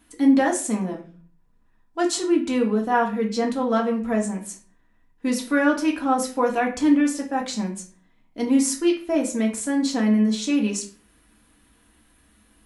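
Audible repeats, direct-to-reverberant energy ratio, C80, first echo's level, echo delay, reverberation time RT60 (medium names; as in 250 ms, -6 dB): no echo, -0.5 dB, 14.5 dB, no echo, no echo, 0.40 s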